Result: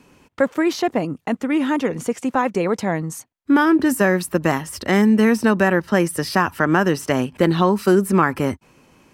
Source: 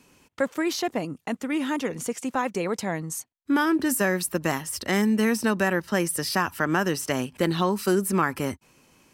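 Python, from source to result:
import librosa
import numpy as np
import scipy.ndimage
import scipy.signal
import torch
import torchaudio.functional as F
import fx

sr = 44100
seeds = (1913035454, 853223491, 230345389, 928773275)

y = fx.high_shelf(x, sr, hz=3200.0, db=-10.0)
y = y * librosa.db_to_amplitude(7.5)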